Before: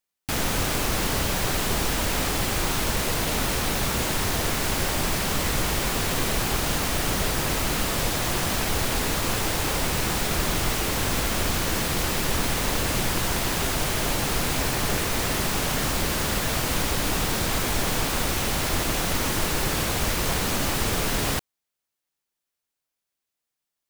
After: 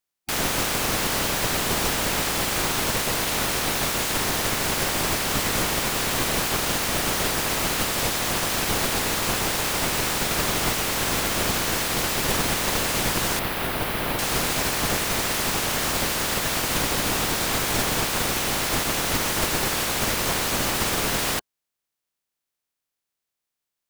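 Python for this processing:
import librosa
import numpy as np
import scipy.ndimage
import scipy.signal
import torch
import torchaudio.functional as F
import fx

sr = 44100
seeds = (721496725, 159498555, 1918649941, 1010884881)

y = fx.spec_clip(x, sr, under_db=13)
y = fx.peak_eq(y, sr, hz=6800.0, db=-14.5, octaves=1.1, at=(13.39, 14.19))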